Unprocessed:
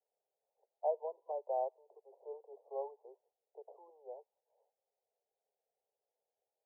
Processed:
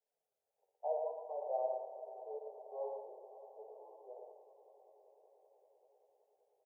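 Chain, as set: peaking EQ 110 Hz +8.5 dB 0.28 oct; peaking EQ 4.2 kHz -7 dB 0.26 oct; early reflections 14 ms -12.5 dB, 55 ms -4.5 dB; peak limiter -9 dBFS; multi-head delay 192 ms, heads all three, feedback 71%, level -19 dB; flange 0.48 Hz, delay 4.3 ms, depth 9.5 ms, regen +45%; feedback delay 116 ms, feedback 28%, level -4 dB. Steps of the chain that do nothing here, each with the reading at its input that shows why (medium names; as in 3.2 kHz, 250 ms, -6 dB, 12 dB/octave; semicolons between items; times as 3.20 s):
peaking EQ 110 Hz: input has nothing below 340 Hz; peaking EQ 4.2 kHz: input has nothing above 1.1 kHz; peak limiter -9 dBFS: peak at its input -22.0 dBFS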